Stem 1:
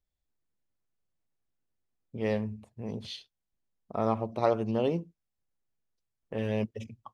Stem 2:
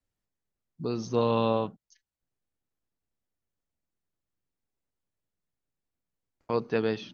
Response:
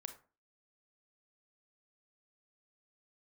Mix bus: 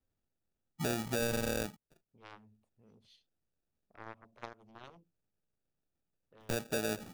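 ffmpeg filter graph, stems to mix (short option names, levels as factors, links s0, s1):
-filter_complex "[0:a]aeval=exprs='0.266*(cos(1*acos(clip(val(0)/0.266,-1,1)))-cos(1*PI/2))+0.0944*(cos(3*acos(clip(val(0)/0.266,-1,1)))-cos(3*PI/2))+0.00531*(cos(7*acos(clip(val(0)/0.266,-1,1)))-cos(7*PI/2))':c=same,acompressor=threshold=0.0282:ratio=6,equalizer=f=860:t=o:w=2.8:g=3.5,volume=0.237[s0];[1:a]highshelf=f=4300:g=-10,acrusher=samples=42:mix=1:aa=0.000001,volume=1.19[s1];[s0][s1]amix=inputs=2:normalize=0,highshelf=f=4800:g=7,alimiter=limit=0.106:level=0:latency=1:release=444"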